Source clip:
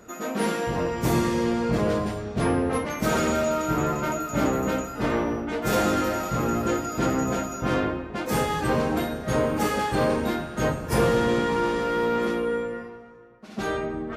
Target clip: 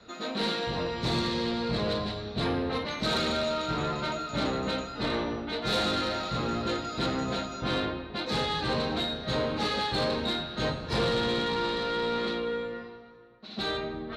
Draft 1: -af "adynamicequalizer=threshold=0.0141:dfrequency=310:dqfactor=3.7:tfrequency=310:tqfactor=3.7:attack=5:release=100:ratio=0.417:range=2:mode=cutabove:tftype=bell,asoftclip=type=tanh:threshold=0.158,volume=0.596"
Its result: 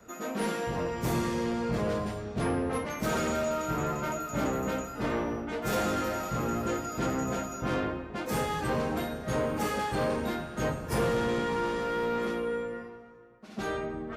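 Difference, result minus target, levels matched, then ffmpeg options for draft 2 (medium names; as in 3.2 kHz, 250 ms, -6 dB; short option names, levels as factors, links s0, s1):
4 kHz band -11.0 dB
-af "adynamicequalizer=threshold=0.0141:dfrequency=310:dqfactor=3.7:tfrequency=310:tqfactor=3.7:attack=5:release=100:ratio=0.417:range=2:mode=cutabove:tftype=bell,lowpass=f=4000:t=q:w=12,asoftclip=type=tanh:threshold=0.158,volume=0.596"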